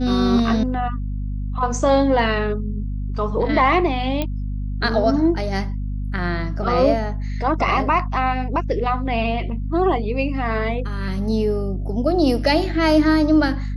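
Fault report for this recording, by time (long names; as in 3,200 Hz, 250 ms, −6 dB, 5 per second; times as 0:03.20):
mains hum 50 Hz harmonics 5 −25 dBFS
0:04.22: click −10 dBFS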